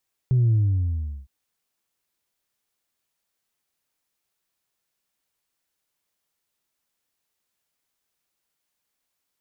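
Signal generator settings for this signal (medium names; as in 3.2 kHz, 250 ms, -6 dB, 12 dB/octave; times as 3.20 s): sub drop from 130 Hz, over 0.96 s, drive 0.5 dB, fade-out 0.75 s, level -16 dB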